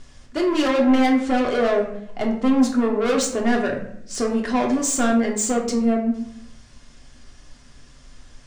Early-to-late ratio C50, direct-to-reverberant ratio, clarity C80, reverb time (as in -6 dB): 6.5 dB, -0.5 dB, 10.0 dB, 0.75 s